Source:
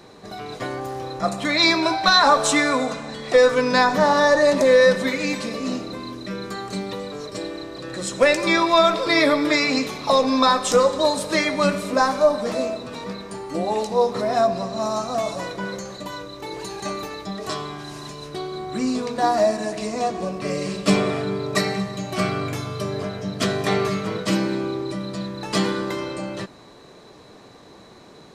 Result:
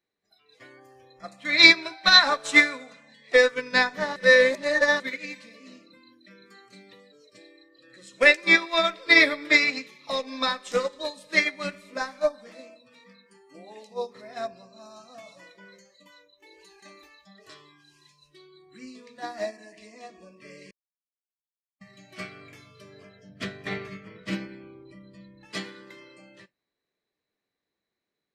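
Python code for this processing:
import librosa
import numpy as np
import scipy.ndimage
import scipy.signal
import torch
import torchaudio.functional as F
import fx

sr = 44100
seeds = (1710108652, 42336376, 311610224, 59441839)

y = fx.bass_treble(x, sr, bass_db=6, treble_db=-6, at=(23.29, 25.45))
y = fx.edit(y, sr, fx.reverse_span(start_s=4.16, length_s=0.84),
    fx.silence(start_s=20.71, length_s=1.1), tone=tone)
y = fx.noise_reduce_blind(y, sr, reduce_db=19)
y = fx.graphic_eq(y, sr, hz=(125, 1000, 2000, 4000), db=(-4, -5, 10, 3))
y = fx.upward_expand(y, sr, threshold_db=-23.0, expansion=2.5)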